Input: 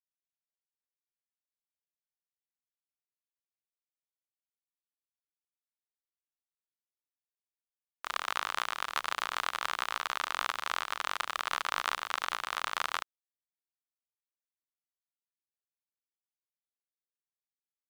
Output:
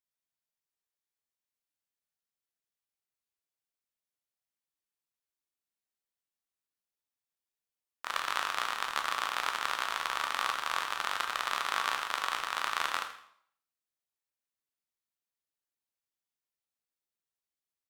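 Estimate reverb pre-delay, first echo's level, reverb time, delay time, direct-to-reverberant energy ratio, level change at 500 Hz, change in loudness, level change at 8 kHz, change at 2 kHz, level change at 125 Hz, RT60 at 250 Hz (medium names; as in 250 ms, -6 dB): 5 ms, -14.0 dB, 0.65 s, 82 ms, 4.0 dB, +1.0 dB, +1.5 dB, +1.5 dB, +1.5 dB, no reading, 0.65 s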